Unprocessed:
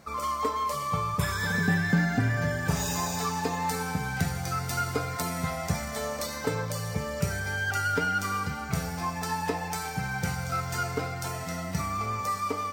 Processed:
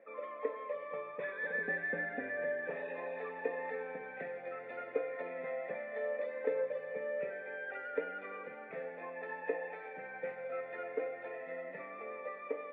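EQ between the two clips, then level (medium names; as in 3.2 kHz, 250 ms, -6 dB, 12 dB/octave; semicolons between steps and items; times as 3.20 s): cascade formant filter e; high-pass 260 Hz 24 dB/octave; +5.5 dB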